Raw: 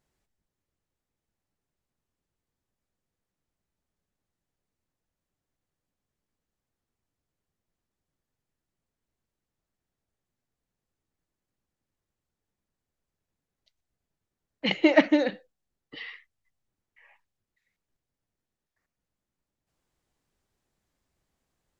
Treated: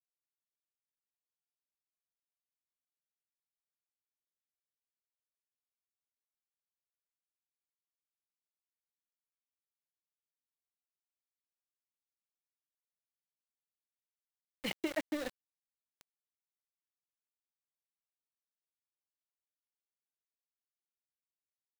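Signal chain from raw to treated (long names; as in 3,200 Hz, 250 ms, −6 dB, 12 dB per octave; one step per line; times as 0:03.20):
downward compressor 6 to 1, threshold −23 dBFS, peak gain reduction 10.5 dB
centre clipping without the shift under −29 dBFS
level −9 dB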